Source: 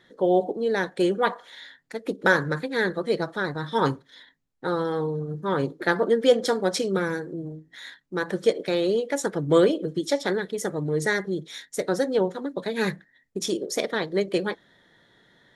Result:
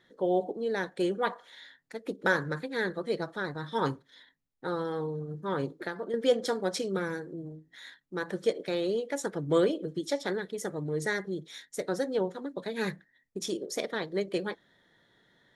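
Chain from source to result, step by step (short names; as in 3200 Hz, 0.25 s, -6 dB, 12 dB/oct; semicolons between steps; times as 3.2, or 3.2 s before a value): 5.73–6.14 compressor 6:1, threshold -26 dBFS, peak gain reduction 10 dB; gain -6.5 dB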